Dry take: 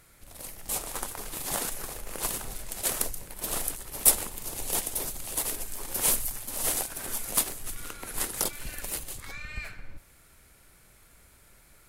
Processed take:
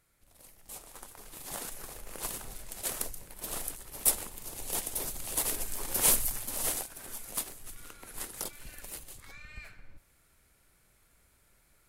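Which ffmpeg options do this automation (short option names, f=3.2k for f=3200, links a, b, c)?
-af "volume=0.5dB,afade=t=in:st=0.99:d=1.02:silence=0.398107,afade=t=in:st=4.6:d=1.05:silence=0.473151,afade=t=out:st=6.42:d=0.47:silence=0.334965"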